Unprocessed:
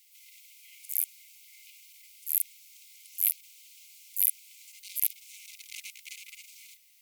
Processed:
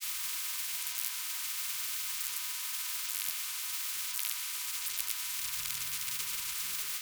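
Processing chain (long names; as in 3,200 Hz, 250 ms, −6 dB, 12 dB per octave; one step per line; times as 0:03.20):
in parallel at −1 dB: upward compression, threshold −35 dBFS
on the sum: noise in a band 1,000–3,200 Hz −68 dBFS
granular cloud, pitch spread up and down by 0 semitones
tuned comb filter 140 Hz, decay 0.41 s, harmonics odd, mix 90%
on a send at −3 dB: convolution reverb, pre-delay 109 ms
on the sum: every bin compressed towards the loudest bin 10 to 1
level +5.5 dB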